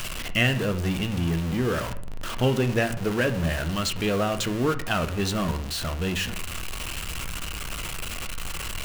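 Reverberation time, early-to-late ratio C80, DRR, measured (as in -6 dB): 0.55 s, 17.5 dB, 7.5 dB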